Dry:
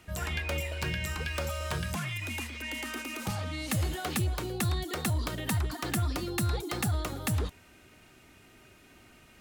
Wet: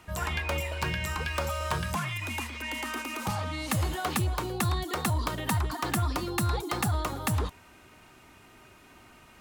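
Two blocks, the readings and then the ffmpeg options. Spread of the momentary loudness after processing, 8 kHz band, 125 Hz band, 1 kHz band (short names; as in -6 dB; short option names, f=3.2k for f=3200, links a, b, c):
4 LU, +1.0 dB, +1.0 dB, +7.0 dB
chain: -af "equalizer=f=1k:t=o:w=0.76:g=8.5,volume=1dB"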